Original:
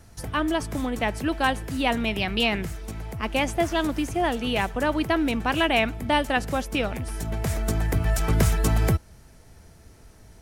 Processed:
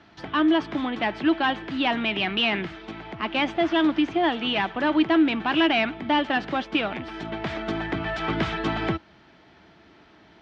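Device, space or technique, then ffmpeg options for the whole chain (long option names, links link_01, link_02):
overdrive pedal into a guitar cabinet: -filter_complex "[0:a]asplit=2[link_01][link_02];[link_02]highpass=frequency=720:poles=1,volume=17dB,asoftclip=type=tanh:threshold=-8.5dB[link_03];[link_01][link_03]amix=inputs=2:normalize=0,lowpass=frequency=3300:poles=1,volume=-6dB,highpass=82,equalizer=frequency=100:width_type=q:width=4:gain=-5,equalizer=frequency=190:width_type=q:width=4:gain=4,equalizer=frequency=320:width_type=q:width=4:gain=9,equalizer=frequency=490:width_type=q:width=4:gain=-7,equalizer=frequency=3300:width_type=q:width=4:gain=5,lowpass=frequency=4100:width=0.5412,lowpass=frequency=4100:width=1.3066,volume=-5dB"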